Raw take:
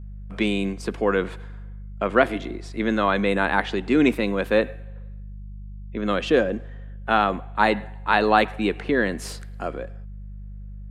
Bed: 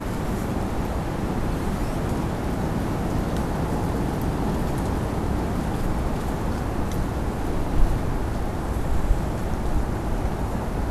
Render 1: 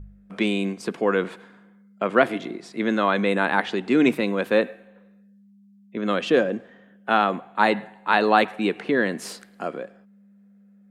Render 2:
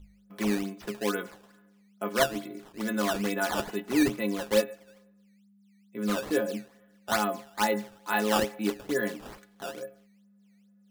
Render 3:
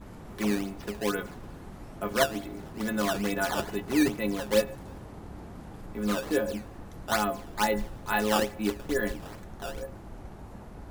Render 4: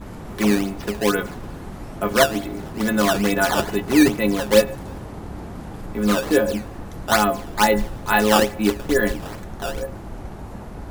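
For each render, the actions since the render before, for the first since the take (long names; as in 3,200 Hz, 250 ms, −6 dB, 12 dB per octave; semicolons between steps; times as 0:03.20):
hum removal 50 Hz, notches 3
stiff-string resonator 62 Hz, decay 0.34 s, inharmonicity 0.03; sample-and-hold swept by an LFO 12×, swing 160% 2.3 Hz
mix in bed −18.5 dB
level +9.5 dB; brickwall limiter −3 dBFS, peak gain reduction 1.5 dB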